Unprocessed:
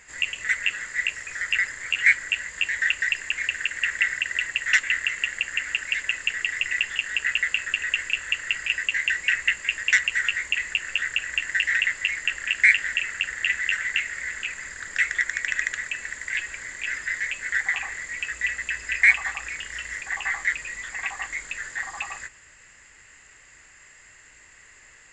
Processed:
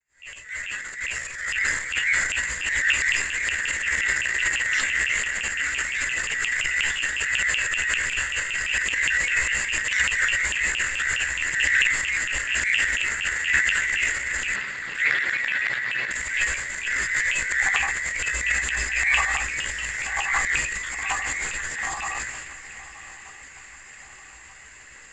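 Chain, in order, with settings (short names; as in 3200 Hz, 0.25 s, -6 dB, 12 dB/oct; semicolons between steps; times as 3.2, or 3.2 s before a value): opening faded in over 1.96 s; 14.54–16.11 elliptic band-pass 110–4200 Hz; limiter -14 dBFS, peak gain reduction 10.5 dB; chorus voices 2, 0.56 Hz, delay 15 ms, depth 1 ms; transient shaper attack -9 dB, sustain +10 dB; on a send: swung echo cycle 1.23 s, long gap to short 3:1, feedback 48%, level -16.5 dB; on the sum: gain +7 dB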